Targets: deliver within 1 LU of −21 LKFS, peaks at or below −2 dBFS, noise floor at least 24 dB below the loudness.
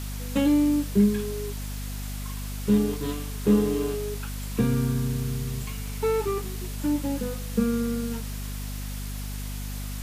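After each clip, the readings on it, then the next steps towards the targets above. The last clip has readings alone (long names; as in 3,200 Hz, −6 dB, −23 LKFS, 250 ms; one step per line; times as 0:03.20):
mains hum 50 Hz; hum harmonics up to 250 Hz; level of the hum −31 dBFS; background noise floor −33 dBFS; target noise floor −52 dBFS; integrated loudness −27.5 LKFS; sample peak −9.5 dBFS; target loudness −21.0 LKFS
→ hum removal 50 Hz, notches 5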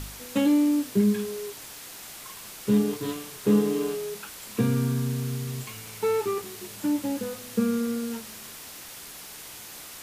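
mains hum none found; background noise floor −43 dBFS; target noise floor −51 dBFS
→ noise reduction from a noise print 8 dB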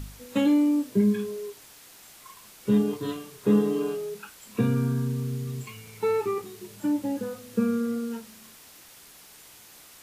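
background noise floor −51 dBFS; integrated loudness −27.0 LKFS; sample peak −11.0 dBFS; target loudness −21.0 LKFS
→ level +6 dB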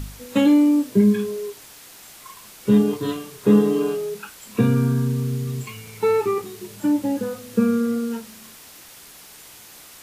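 integrated loudness −21.0 LKFS; sample peak −5.0 dBFS; background noise floor −45 dBFS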